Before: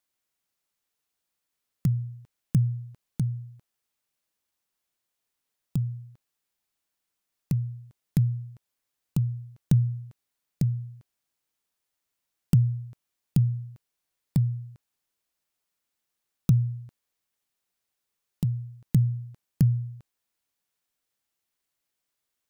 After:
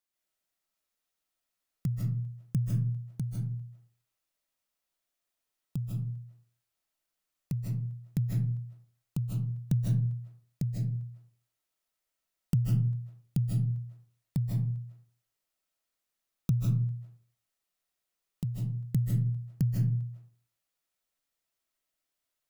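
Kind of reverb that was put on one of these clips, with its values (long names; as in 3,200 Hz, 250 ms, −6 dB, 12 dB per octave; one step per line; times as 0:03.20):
comb and all-pass reverb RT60 0.46 s, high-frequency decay 0.55×, pre-delay 115 ms, DRR −3.5 dB
level −7 dB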